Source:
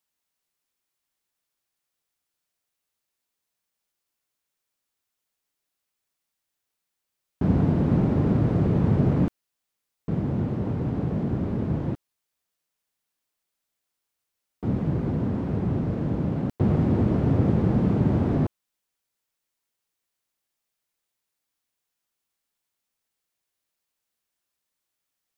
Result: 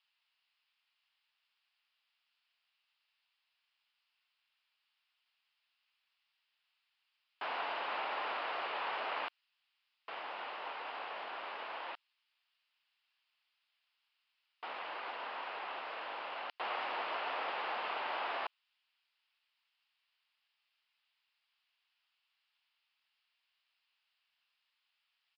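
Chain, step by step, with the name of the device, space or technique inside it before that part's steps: musical greeting card (resampled via 11.025 kHz; high-pass 860 Hz 24 dB/octave; peaking EQ 2.8 kHz +9 dB 0.55 oct); trim +3.5 dB

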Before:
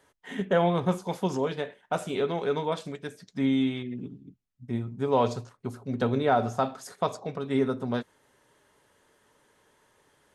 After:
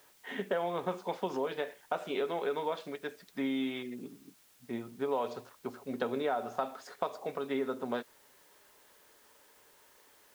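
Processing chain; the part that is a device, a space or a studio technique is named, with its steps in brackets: baby monitor (band-pass 340–3800 Hz; compression, threshold -29 dBFS, peak gain reduction 10 dB; white noise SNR 27 dB)

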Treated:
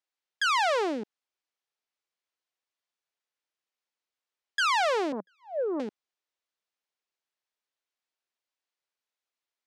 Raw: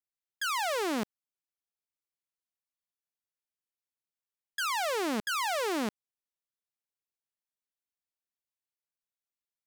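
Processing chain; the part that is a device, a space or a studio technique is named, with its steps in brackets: 5.12–5.80 s: elliptic band-pass 180–580 Hz, stop band 40 dB; public-address speaker with an overloaded transformer (transformer saturation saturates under 380 Hz; band-pass 350–5400 Hz); trim +7 dB

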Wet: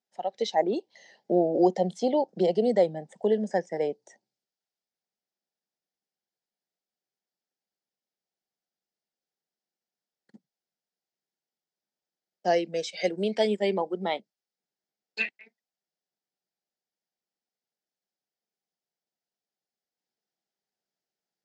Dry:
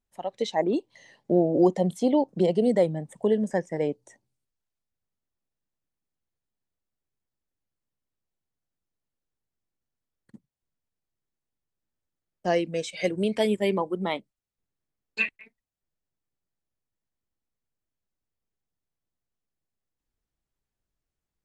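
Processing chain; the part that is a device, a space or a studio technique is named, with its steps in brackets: television speaker (cabinet simulation 200–6900 Hz, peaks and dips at 280 Hz -9 dB, 760 Hz +5 dB, 1.1 kHz -10 dB, 2.5 kHz -4 dB, 5 kHz +6 dB)

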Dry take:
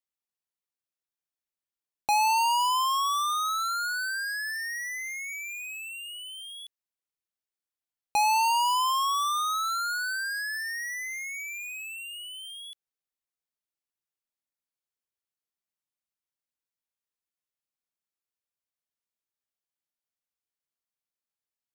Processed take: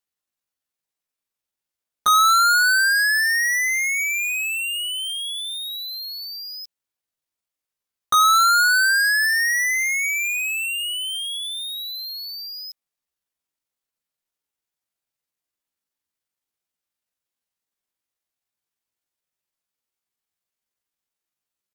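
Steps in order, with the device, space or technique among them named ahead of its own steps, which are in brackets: chipmunk voice (pitch shift +7 st); trim +8 dB

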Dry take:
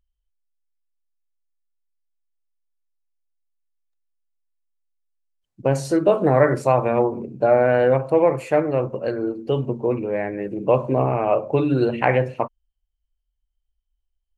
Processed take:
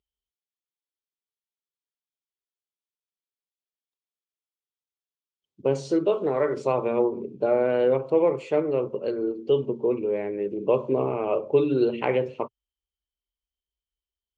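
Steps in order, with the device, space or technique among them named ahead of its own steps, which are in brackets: car door speaker (cabinet simulation 86–6800 Hz, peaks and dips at 120 Hz -8 dB, 410 Hz +9 dB, 720 Hz -6 dB, 1.7 kHz -10 dB, 3.3 kHz +8 dB); 6.05–6.57 s: bass shelf 440 Hz -8 dB; trim -5.5 dB

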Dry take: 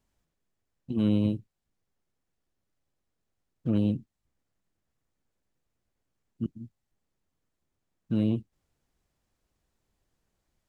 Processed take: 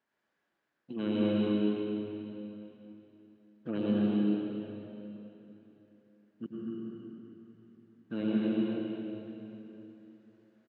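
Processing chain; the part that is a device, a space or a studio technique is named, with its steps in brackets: station announcement (band-pass 320–3500 Hz; peaking EQ 1.6 kHz +9 dB 0.5 oct; loudspeakers at several distances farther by 83 m -6 dB, 98 m -9 dB; reverberation RT60 3.2 s, pre-delay 89 ms, DRR -4.5 dB); trim -2.5 dB

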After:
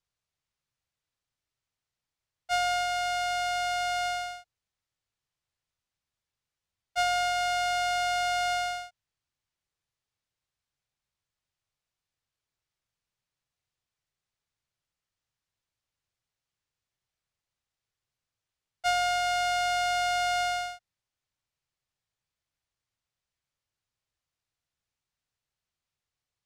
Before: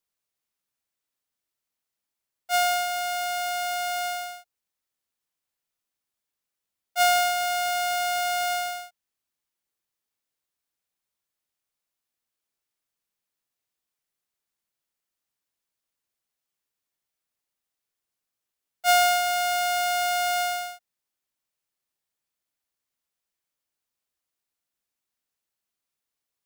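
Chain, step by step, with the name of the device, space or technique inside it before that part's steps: jukebox (low-pass 6.6 kHz 12 dB/octave; resonant low shelf 170 Hz +9 dB, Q 1.5; compression, threshold -24 dBFS, peak gain reduction 7.5 dB)

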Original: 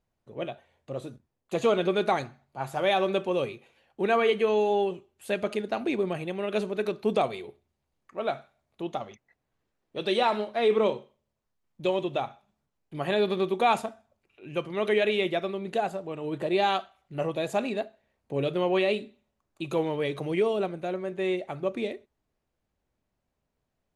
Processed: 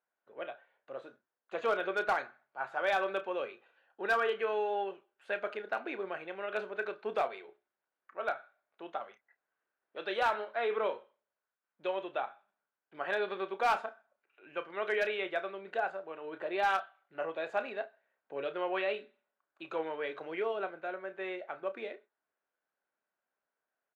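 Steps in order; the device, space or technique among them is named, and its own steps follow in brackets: 3.52–4.35 s: band-stop 2.2 kHz, Q 6.3; megaphone (band-pass 530–2600 Hz; peaking EQ 1.5 kHz +11 dB 0.39 oct; hard clipper -17.5 dBFS, distortion -21 dB; doubling 31 ms -12 dB); trim -5 dB

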